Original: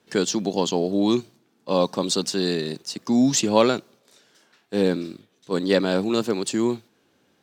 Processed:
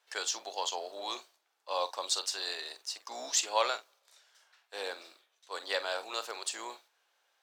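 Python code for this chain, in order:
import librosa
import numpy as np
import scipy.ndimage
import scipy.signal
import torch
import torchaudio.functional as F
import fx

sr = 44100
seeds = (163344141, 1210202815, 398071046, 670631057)

y = fx.octave_divider(x, sr, octaves=2, level_db=2.0)
y = scipy.signal.sosfilt(scipy.signal.butter(4, 680.0, 'highpass', fs=sr, output='sos'), y)
y = fx.doubler(y, sr, ms=45.0, db=-13.5)
y = y * librosa.db_to_amplitude(-6.0)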